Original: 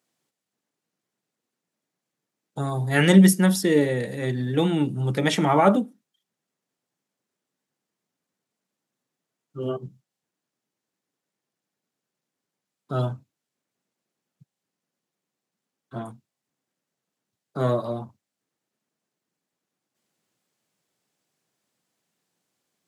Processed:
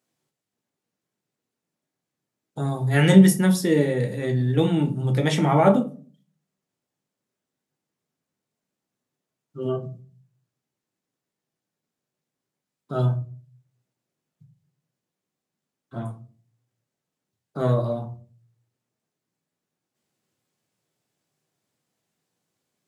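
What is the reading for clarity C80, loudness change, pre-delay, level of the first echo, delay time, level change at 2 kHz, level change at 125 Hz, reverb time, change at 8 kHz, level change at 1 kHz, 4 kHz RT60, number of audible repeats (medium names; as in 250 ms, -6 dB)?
20.0 dB, +0.5 dB, 8 ms, no echo, no echo, -2.0 dB, +3.0 dB, 0.40 s, -2.0 dB, -1.0 dB, 0.25 s, no echo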